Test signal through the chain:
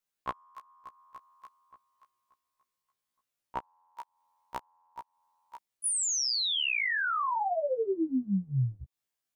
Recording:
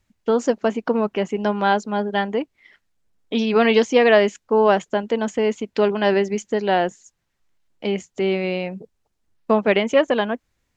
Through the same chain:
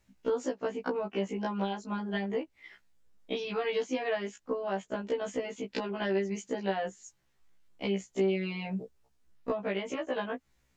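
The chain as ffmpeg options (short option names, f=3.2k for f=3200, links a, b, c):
-af "acompressor=threshold=-28dB:ratio=12,afftfilt=real='re*1.73*eq(mod(b,3),0)':imag='im*1.73*eq(mod(b,3),0)':win_size=2048:overlap=0.75,volume=2dB"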